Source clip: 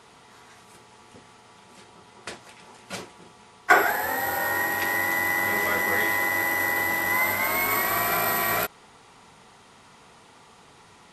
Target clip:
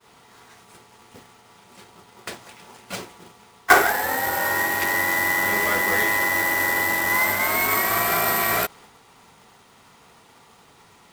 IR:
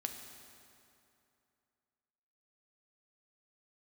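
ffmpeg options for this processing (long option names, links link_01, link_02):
-af "acrusher=bits=2:mode=log:mix=0:aa=0.000001,agate=range=-33dB:threshold=-47dB:ratio=3:detection=peak,volume=2.5dB"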